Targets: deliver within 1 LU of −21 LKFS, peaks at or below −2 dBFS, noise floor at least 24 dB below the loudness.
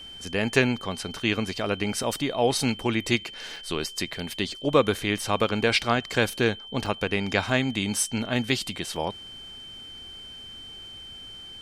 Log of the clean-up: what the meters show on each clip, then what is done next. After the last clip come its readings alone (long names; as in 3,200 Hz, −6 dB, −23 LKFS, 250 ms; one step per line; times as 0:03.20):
number of dropouts 5; longest dropout 3.2 ms; interfering tone 3,100 Hz; level of the tone −40 dBFS; integrated loudness −26.0 LKFS; sample peak −5.5 dBFS; target loudness −21.0 LKFS
→ repair the gap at 0:02.03/0:03.56/0:05.79/0:06.86/0:08.96, 3.2 ms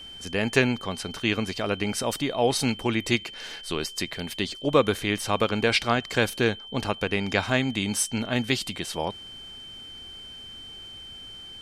number of dropouts 0; interfering tone 3,100 Hz; level of the tone −40 dBFS
→ notch filter 3,100 Hz, Q 30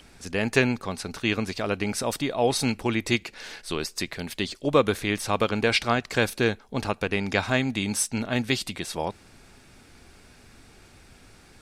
interfering tone none found; integrated loudness −26.0 LKFS; sample peak −6.0 dBFS; target loudness −21.0 LKFS
→ level +5 dB
brickwall limiter −2 dBFS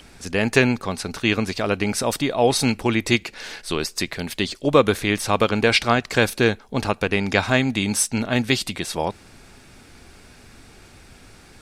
integrated loudness −21.5 LKFS; sample peak −2.0 dBFS; background noise floor −49 dBFS